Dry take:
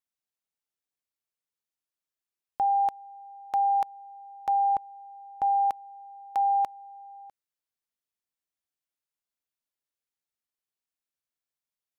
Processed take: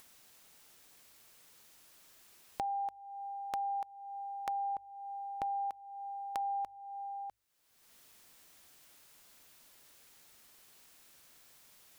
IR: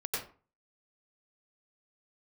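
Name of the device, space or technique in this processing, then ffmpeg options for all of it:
upward and downward compression: -filter_complex "[0:a]bandreject=f=50:t=h:w=6,bandreject=f=100:t=h:w=6,acompressor=mode=upward:threshold=0.0112:ratio=2.5,acompressor=threshold=0.0112:ratio=4,asettb=1/sr,asplit=3[s0][s1][s2];[s0]atrim=end=6.404[s3];[s1]atrim=start=6.4:end=7.24,asetpts=PTS-STARTPTS,afade=t=in:d=0.004:c=qsin,afade=t=out:st=0.836:d=0.004:c=qsin,lowshelf=f=140:g=8[s4];[s2]atrim=start=7.236[s5];[s3][s4]acrossfade=d=0.004:c1=hsin:c2=qsin[s6];[s6][s5]acrossfade=d=0.004:c1=qsin:c2=hsin,volume=1.19"

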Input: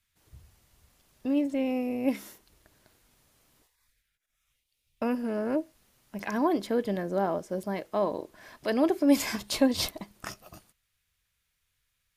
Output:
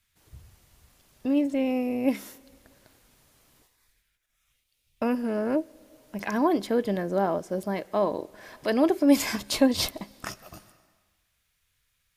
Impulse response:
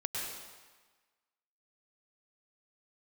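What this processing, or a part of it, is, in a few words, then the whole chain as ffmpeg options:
ducked reverb: -filter_complex "[0:a]asplit=3[s0][s1][s2];[1:a]atrim=start_sample=2205[s3];[s1][s3]afir=irnorm=-1:irlink=0[s4];[s2]apad=whole_len=536583[s5];[s4][s5]sidechaincompress=threshold=0.00794:ratio=10:attack=16:release=501,volume=0.2[s6];[s0][s6]amix=inputs=2:normalize=0,volume=1.33"

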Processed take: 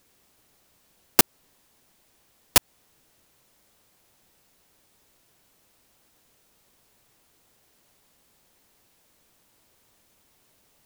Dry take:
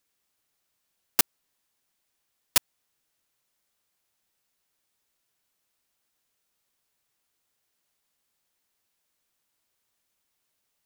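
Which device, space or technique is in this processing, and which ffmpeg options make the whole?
mastering chain: -af "equalizer=f=1400:t=o:w=0.77:g=-1.5,acompressor=threshold=0.0794:ratio=2,asoftclip=type=tanh:threshold=0.335,tiltshelf=f=970:g=4.5,alimiter=level_in=7.94:limit=0.891:release=50:level=0:latency=1,volume=0.891"

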